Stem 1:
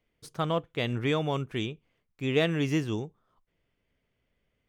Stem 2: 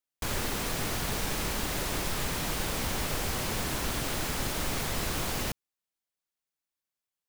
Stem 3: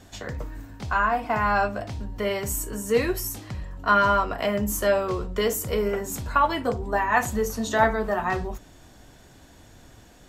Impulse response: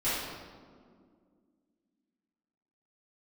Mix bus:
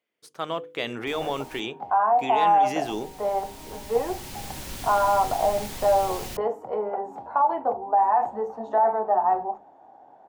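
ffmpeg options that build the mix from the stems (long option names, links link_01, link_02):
-filter_complex "[0:a]dynaudnorm=framelen=360:gausssize=3:maxgain=11.5dB,alimiter=limit=-13dB:level=0:latency=1:release=17,volume=-3dB,asplit=2[link_01][link_02];[1:a]equalizer=frequency=890:width_type=o:width=1.7:gain=-9.5,adelay=850,volume=-3dB,asplit=3[link_03][link_04][link_05];[link_03]atrim=end=1.6,asetpts=PTS-STARTPTS,afade=type=out:start_time=1.596:duration=0.004:curve=hsin[link_06];[link_04]atrim=start=1.6:end=2.84,asetpts=PTS-STARTPTS,volume=0[link_07];[link_05]atrim=start=2.84,asetpts=PTS-STARTPTS,afade=type=in:duration=0.004:curve=hsin[link_08];[link_06][link_07][link_08]concat=n=3:v=0:a=1[link_09];[2:a]lowpass=frequency=810:width_type=q:width=9.1,aemphasis=mode=production:type=50fm,adelay=1000,volume=-3.5dB[link_10];[link_02]apad=whole_len=358877[link_11];[link_09][link_11]sidechaincompress=threshold=-37dB:ratio=3:attack=16:release=1420[link_12];[link_01][link_10]amix=inputs=2:normalize=0,highpass=330,alimiter=limit=-12.5dB:level=0:latency=1:release=37,volume=0dB[link_13];[link_12][link_13]amix=inputs=2:normalize=0,bandreject=frequency=50:width_type=h:width=6,bandreject=frequency=100:width_type=h:width=6,bandreject=frequency=150:width_type=h:width=6,bandreject=frequency=200:width_type=h:width=6,bandreject=frequency=250:width_type=h:width=6,bandreject=frequency=300:width_type=h:width=6,bandreject=frequency=350:width_type=h:width=6,bandreject=frequency=400:width_type=h:width=6,bandreject=frequency=450:width_type=h:width=6,bandreject=frequency=500:width_type=h:width=6"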